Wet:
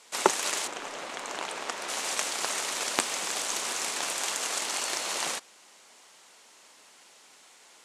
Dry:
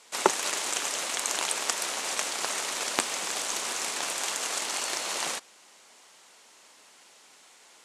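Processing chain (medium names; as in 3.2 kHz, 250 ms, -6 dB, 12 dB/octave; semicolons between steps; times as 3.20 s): 0.66–1.88 s: low-pass 1.1 kHz -> 2.1 kHz 6 dB/octave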